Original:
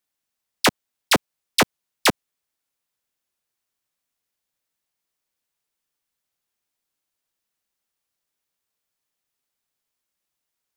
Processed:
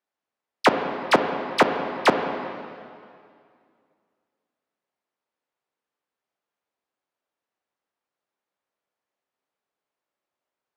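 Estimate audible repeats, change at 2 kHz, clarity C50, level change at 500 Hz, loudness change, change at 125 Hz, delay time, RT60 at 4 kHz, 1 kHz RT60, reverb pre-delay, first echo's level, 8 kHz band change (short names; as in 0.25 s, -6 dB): none, -1.0 dB, 6.5 dB, +5.0 dB, -1.0 dB, -3.0 dB, none, 2.0 s, 2.2 s, 24 ms, none, -14.0 dB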